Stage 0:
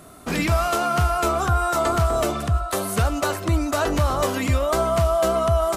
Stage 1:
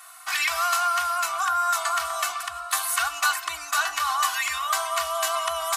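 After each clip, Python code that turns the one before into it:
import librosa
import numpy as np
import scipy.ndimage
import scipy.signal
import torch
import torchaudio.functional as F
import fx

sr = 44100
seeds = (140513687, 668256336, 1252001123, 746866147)

y = scipy.signal.sosfilt(scipy.signal.cheby2(4, 40, 490.0, 'highpass', fs=sr, output='sos'), x)
y = y + 0.96 * np.pad(y, (int(2.7 * sr / 1000.0), 0))[:len(y)]
y = fx.rider(y, sr, range_db=10, speed_s=2.0)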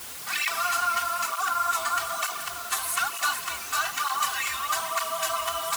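y = fx.echo_feedback(x, sr, ms=243, feedback_pct=55, wet_db=-12.5)
y = fx.quant_dither(y, sr, seeds[0], bits=6, dither='triangular')
y = fx.flanger_cancel(y, sr, hz=1.1, depth_ms=7.2)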